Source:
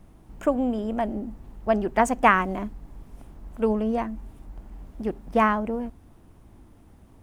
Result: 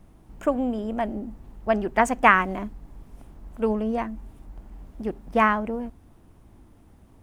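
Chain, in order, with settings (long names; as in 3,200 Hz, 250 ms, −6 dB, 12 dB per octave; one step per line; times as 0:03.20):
dynamic equaliser 2,000 Hz, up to +5 dB, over −34 dBFS, Q 0.86
level −1 dB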